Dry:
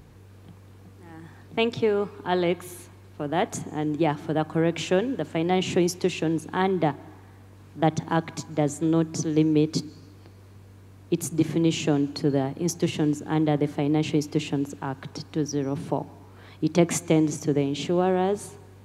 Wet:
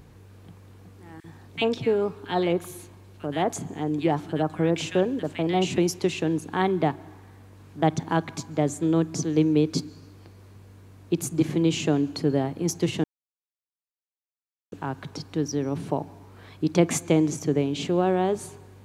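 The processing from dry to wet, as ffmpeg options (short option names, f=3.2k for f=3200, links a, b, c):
-filter_complex "[0:a]asettb=1/sr,asplit=3[a][b][c];[a]atrim=end=1.204[d];[b]atrim=start=1.2:end=5.78,asetpts=PTS-STARTPTS,afade=t=in:d=0.004:c=qsin,afade=t=out:st=4.576:d=0.004:c=qsin,acrossover=split=1600[e][f];[e]adelay=40[g];[g][f]amix=inputs=2:normalize=0,atrim=end_sample=201978[h];[c]atrim=start=5.776[i];[d][h]acrossfade=d=0.004:c1=hsin:c2=qsin[j];[j][i]acrossfade=d=0.004:c1=qsin:c2=hsin,asplit=3[k][l][m];[k]atrim=end=13.04,asetpts=PTS-STARTPTS,afade=t=out:st=13.036:d=0.004:c=hsin[n];[l]atrim=start=13.04:end=14.72,asetpts=PTS-STARTPTS,volume=0[o];[m]atrim=start=14.72,asetpts=PTS-STARTPTS,afade=t=in:d=0.004:c=hsin[p];[n][o][p]concat=n=3:v=0:a=1"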